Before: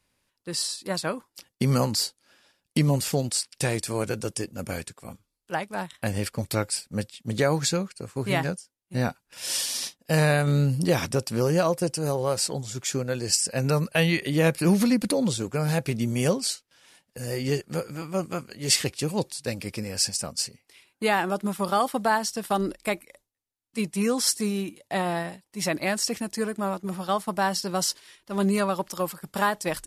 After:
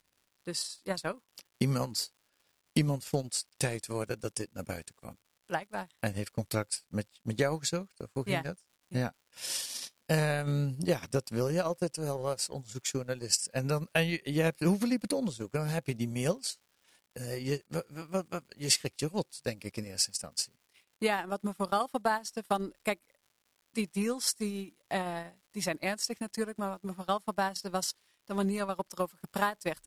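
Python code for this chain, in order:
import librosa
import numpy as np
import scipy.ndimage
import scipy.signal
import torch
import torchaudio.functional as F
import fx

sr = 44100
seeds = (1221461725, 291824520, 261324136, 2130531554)

y = fx.transient(x, sr, attack_db=6, sustain_db=-11)
y = fx.dmg_crackle(y, sr, seeds[0], per_s=220.0, level_db=-46.0)
y = y * 10.0 ** (-8.5 / 20.0)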